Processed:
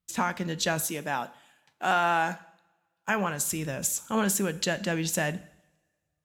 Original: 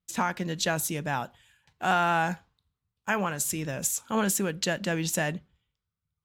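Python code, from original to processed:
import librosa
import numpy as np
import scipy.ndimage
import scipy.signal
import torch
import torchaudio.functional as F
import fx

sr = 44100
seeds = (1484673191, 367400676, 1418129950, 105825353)

y = fx.highpass(x, sr, hz=220.0, slope=12, at=(0.87, 3.09))
y = fx.rev_double_slope(y, sr, seeds[0], early_s=0.67, late_s=1.8, knee_db=-20, drr_db=14.5)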